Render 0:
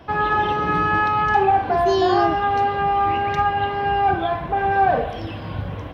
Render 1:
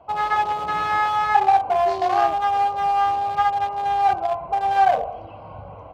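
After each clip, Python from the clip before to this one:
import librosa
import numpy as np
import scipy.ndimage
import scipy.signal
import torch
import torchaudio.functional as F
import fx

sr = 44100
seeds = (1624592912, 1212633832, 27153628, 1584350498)

y = fx.wiener(x, sr, points=25)
y = fx.low_shelf_res(y, sr, hz=470.0, db=-12.5, q=1.5)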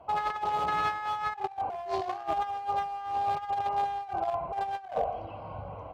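y = fx.over_compress(x, sr, threshold_db=-24.0, ratio=-0.5)
y = y * librosa.db_to_amplitude(-6.5)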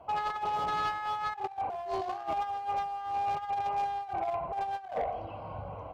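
y = 10.0 ** (-25.0 / 20.0) * np.tanh(x / 10.0 ** (-25.0 / 20.0))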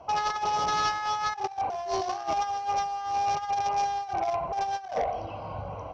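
y = fx.lowpass_res(x, sr, hz=5700.0, q=9.2)
y = y * librosa.db_to_amplitude(4.0)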